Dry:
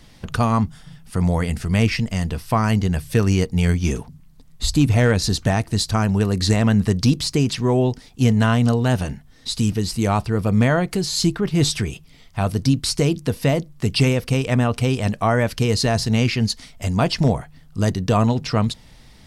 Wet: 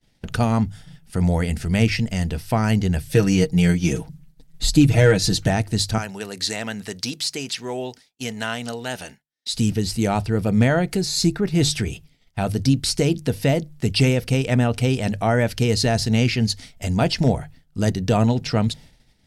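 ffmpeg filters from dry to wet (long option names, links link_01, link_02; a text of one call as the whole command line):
ffmpeg -i in.wav -filter_complex "[0:a]asettb=1/sr,asplit=3[link_01][link_02][link_03];[link_01]atrim=end=3.134[link_04];[link_02]atrim=start=3.13:end=5.48,asetpts=PTS-STARTPTS,afade=type=in:duration=0.004:curve=qsin,afade=type=out:start_time=2.346:duration=0.004:curve=qsin,aecho=1:1:6.3:0.71,atrim=end_sample=103635[link_05];[link_03]atrim=start=5.476[link_06];[link_04][link_05]acrossfade=duration=0.004:curve1=hsin:curve2=qsin[link_07];[link_07][link_06]acrossfade=duration=0.004:curve1=qsin:curve2=hsin,asettb=1/sr,asplit=3[link_08][link_09][link_10];[link_08]atrim=end=5.984[link_11];[link_09]atrim=start=5.98:end=9.54,asetpts=PTS-STARTPTS,afade=type=in:duration=0.004:curve=qsin,afade=type=out:start_time=3.556:duration=0.004:curve=qsin,highpass=frequency=1100:poles=1[link_12];[link_10]atrim=start=9.536[link_13];[link_11][link_12]acrossfade=duration=0.004:curve1=hsin:curve2=qsin[link_14];[link_14][link_13]acrossfade=duration=0.004:curve1=qsin:curve2=hsin,asettb=1/sr,asplit=3[link_15][link_16][link_17];[link_15]atrim=end=10.974[link_18];[link_16]atrim=start=10.97:end=11.53,asetpts=PTS-STARTPTS,afade=type=in:duration=0.004:curve=qsin,afade=type=out:start_time=0.556:duration=0.004:curve=qsin,bandreject=frequency=3100:width=5.6[link_19];[link_17]atrim=start=11.526[link_20];[link_18][link_19]acrossfade=duration=0.004:curve1=hsin:curve2=qsin[link_21];[link_21][link_20]acrossfade=duration=0.004:curve1=qsin:curve2=hsin,equalizer=frequency=1100:width_type=o:width=0.27:gain=-11.5,bandreject=frequency=50:width_type=h:width=6,bandreject=frequency=100:width_type=h:width=6,bandreject=frequency=150:width_type=h:width=6,agate=range=-33dB:threshold=-37dB:ratio=3:detection=peak" out.wav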